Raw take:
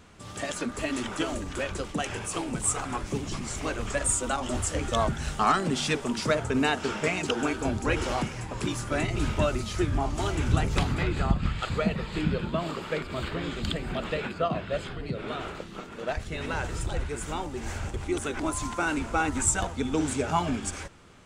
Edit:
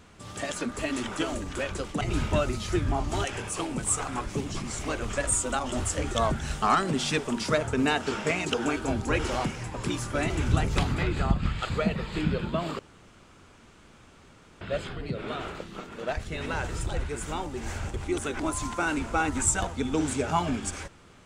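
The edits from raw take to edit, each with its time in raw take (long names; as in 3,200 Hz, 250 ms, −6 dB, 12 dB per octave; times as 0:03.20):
0:09.07–0:10.30: move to 0:02.01
0:12.79–0:14.61: fill with room tone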